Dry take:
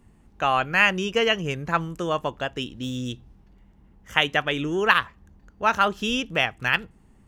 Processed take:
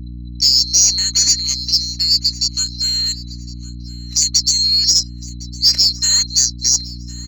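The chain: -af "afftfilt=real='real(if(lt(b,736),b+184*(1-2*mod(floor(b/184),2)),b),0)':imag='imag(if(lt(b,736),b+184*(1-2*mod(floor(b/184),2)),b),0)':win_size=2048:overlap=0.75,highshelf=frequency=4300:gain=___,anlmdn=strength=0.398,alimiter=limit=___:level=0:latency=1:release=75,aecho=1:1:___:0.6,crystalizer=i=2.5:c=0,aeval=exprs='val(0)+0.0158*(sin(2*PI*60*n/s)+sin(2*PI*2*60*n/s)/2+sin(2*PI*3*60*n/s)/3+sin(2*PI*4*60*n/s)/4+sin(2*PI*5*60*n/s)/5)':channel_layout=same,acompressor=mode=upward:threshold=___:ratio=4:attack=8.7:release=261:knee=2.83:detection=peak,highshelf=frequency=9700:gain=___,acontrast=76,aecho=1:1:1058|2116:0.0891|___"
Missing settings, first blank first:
-5, 0.251, 3.3, 0.02, -10.5, 0.0267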